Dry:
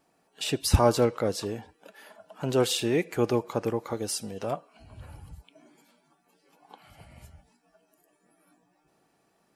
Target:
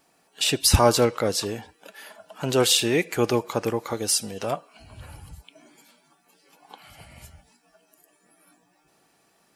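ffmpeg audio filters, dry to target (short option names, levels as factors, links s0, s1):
-af "tiltshelf=f=1400:g=-4,volume=2"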